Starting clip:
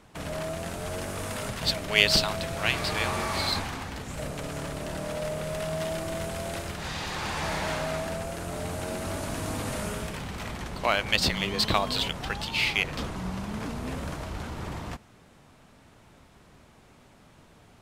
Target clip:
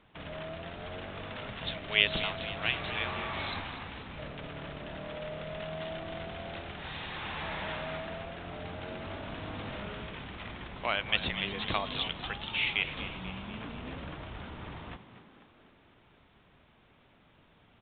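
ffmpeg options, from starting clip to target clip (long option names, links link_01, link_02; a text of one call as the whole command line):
ffmpeg -i in.wav -filter_complex "[0:a]highshelf=frequency=2300:gain=8.5,asplit=2[link_01][link_02];[link_02]asplit=7[link_03][link_04][link_05][link_06][link_07][link_08][link_09];[link_03]adelay=244,afreqshift=52,volume=-12dB[link_10];[link_04]adelay=488,afreqshift=104,volume=-16.6dB[link_11];[link_05]adelay=732,afreqshift=156,volume=-21.2dB[link_12];[link_06]adelay=976,afreqshift=208,volume=-25.7dB[link_13];[link_07]adelay=1220,afreqshift=260,volume=-30.3dB[link_14];[link_08]adelay=1464,afreqshift=312,volume=-34.9dB[link_15];[link_09]adelay=1708,afreqshift=364,volume=-39.5dB[link_16];[link_10][link_11][link_12][link_13][link_14][link_15][link_16]amix=inputs=7:normalize=0[link_17];[link_01][link_17]amix=inputs=2:normalize=0,aresample=8000,aresample=44100,volume=-8.5dB" out.wav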